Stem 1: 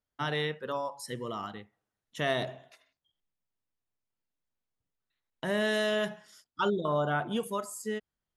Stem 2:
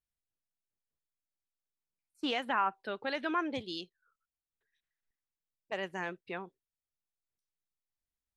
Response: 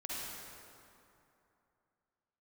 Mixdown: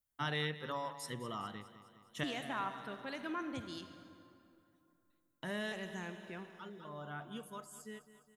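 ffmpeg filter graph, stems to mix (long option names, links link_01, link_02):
-filter_complex "[0:a]equalizer=frequency=500:width_type=o:width=1.2:gain=-5.5,volume=-3.5dB,afade=type=out:start_time=5.06:duration=0.78:silence=0.375837,asplit=2[link_01][link_02];[link_02]volume=-15dB[link_03];[1:a]asubboost=boost=4:cutoff=250,aexciter=amount=5.4:drive=3.8:freq=6300,volume=-10dB,asplit=3[link_04][link_05][link_06];[link_05]volume=-7.5dB[link_07];[link_06]apad=whole_len=368902[link_08];[link_01][link_08]sidechaincompress=threshold=-52dB:ratio=8:attack=16:release=1150[link_09];[2:a]atrim=start_sample=2205[link_10];[link_07][link_10]afir=irnorm=-1:irlink=0[link_11];[link_03]aecho=0:1:206|412|618|824|1030|1236|1442|1648|1854:1|0.59|0.348|0.205|0.121|0.0715|0.0422|0.0249|0.0147[link_12];[link_09][link_04][link_11][link_12]amix=inputs=4:normalize=0"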